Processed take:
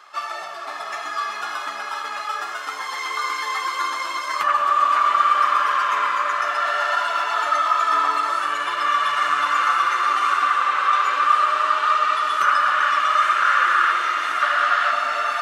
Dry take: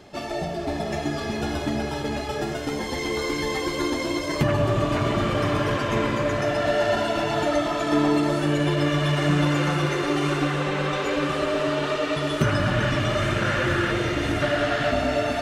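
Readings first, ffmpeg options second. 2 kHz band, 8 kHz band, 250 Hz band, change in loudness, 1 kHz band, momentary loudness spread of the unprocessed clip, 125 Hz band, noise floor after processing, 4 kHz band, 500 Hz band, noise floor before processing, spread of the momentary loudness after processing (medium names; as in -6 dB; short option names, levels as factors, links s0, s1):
+6.0 dB, 0.0 dB, under -20 dB, +4.5 dB, +11.5 dB, 6 LU, under -35 dB, -31 dBFS, +1.0 dB, -10.5 dB, -30 dBFS, 11 LU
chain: -af "highpass=f=1200:t=q:w=6.9"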